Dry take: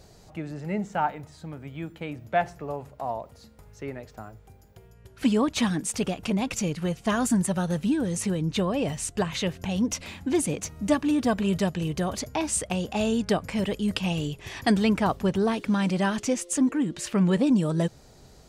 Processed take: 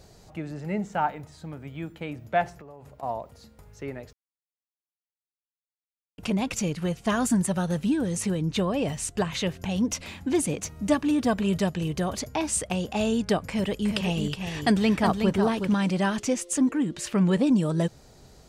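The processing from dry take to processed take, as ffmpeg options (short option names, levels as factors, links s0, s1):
-filter_complex "[0:a]asettb=1/sr,asplit=3[s0][s1][s2];[s0]atrim=end=2.494[s3];[s1]atrim=start=2.49:end=3.03,asetpts=PTS-STARTPTS,afade=t=in:d=0.004:c=qsin,afade=t=out:st=0.536:d=0.004:c=qsin,acompressor=threshold=0.00891:ratio=10:attack=3.2:release=140:knee=1:detection=peak[s4];[s2]atrim=start=3.026[s5];[s3][s4]acrossfade=d=0.004:c1=hsin:c2=qsin[s6];[s6][s5]acrossfade=d=0.004:c1=qsin:c2=hsin,asettb=1/sr,asplit=3[s7][s8][s9];[s7]atrim=end=13.454[s10];[s8]atrim=start=13.45:end=15.74,asetpts=PTS-STARTPTS,afade=t=in:d=0.004:c=qsin,afade=t=out:st=2.286:d=0.004:c=qsin,aecho=1:1:368:0.473,atrim=end_sample=100989[s11];[s9]atrim=start=15.736[s12];[s10][s11]acrossfade=d=0.004:c1=hsin:c2=qsin[s13];[s13][s12]acrossfade=d=0.004:c1=qsin:c2=hsin,asplit=3[s14][s15][s16];[s14]atrim=end=4.13,asetpts=PTS-STARTPTS,afade=t=out:st=4.126:d=0.004:c=hsin[s17];[s15]atrim=start=4.13:end=6.18,asetpts=PTS-STARTPTS,volume=0[s18];[s16]atrim=start=6.18,asetpts=PTS-STARTPTS,afade=t=in:d=0.004:c=hsin[s19];[s17][s18][s19]concat=n=3:v=0:a=1"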